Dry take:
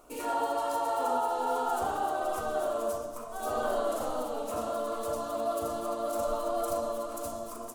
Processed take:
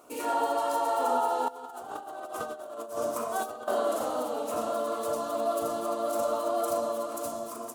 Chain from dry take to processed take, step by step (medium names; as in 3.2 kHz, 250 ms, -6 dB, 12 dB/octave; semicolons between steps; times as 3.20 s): high-pass 150 Hz 12 dB/octave; 1.48–3.68 s: compressor with a negative ratio -37 dBFS, ratio -0.5; trim +2.5 dB